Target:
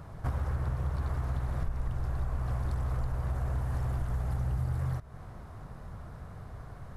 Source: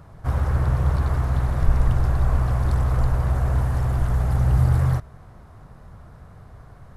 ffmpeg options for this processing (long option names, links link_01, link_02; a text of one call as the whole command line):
ffmpeg -i in.wav -af "acompressor=threshold=-29dB:ratio=6" out.wav